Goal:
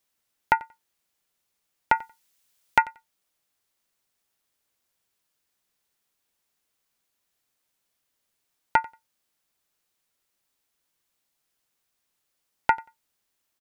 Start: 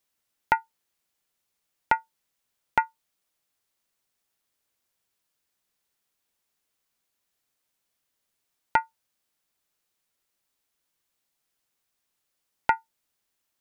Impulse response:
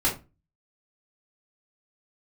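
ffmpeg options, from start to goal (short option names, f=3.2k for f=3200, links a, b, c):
-filter_complex "[0:a]asettb=1/sr,asplit=3[a][b][c];[a]atrim=end=1.954[d];[b]atrim=start=1.95:end=2.82,asetpts=PTS-STARTPTS,afade=t=in:d=0.004:c=qsin,afade=t=out:st=0.866:d=0.004:c=qsin,highshelf=f=2.1k:g=9[e];[c]atrim=start=2.816[f];[d][e]acrossfade=d=0.004:c1=hsin:c2=qsin[g];[g][f]acrossfade=d=0.004:c1=qsin:c2=hsin,asplit=2[h][i];[i]aecho=0:1:91|182:0.075|0.012[j];[h][j]amix=inputs=2:normalize=0,volume=1.5dB"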